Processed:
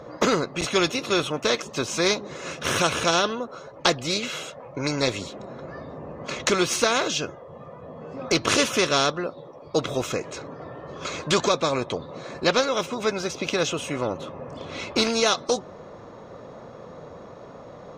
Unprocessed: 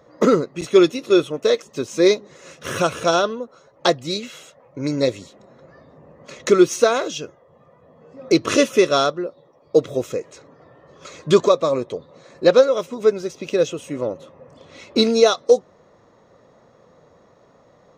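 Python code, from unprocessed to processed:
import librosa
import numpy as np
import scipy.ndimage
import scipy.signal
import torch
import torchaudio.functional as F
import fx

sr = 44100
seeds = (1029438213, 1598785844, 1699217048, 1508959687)

y = fx.high_shelf(x, sr, hz=6200.0, db=-11.0)
y = fx.notch(y, sr, hz=1900.0, q=11.0)
y = fx.spectral_comp(y, sr, ratio=2.0)
y = y * 10.0 ** (-4.5 / 20.0)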